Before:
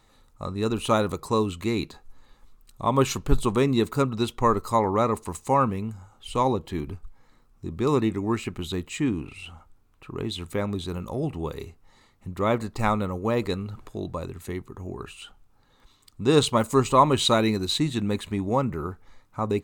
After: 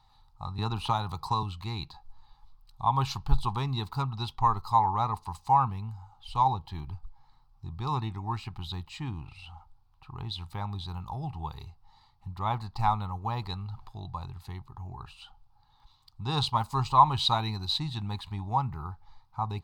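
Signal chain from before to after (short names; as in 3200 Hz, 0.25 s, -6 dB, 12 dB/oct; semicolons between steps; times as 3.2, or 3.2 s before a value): EQ curve 130 Hz 0 dB, 250 Hz -16 dB, 350 Hz -17 dB, 560 Hz -21 dB, 820 Hz +7 dB, 1400 Hz -8 dB, 2100 Hz -11 dB, 4700 Hz +2 dB, 7000 Hz -16 dB, 15000 Hz -10 dB; 0.58–1.43 three-band squash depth 70%; gain -1.5 dB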